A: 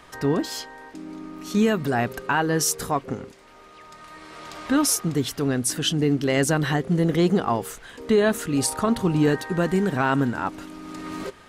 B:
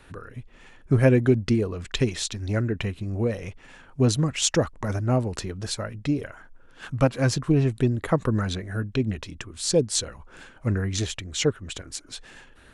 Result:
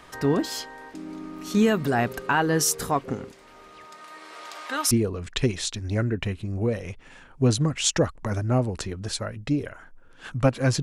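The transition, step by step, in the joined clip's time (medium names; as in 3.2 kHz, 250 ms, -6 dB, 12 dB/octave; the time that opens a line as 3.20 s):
A
3.85–4.91 s: high-pass 230 Hz -> 920 Hz
4.91 s: go over to B from 1.49 s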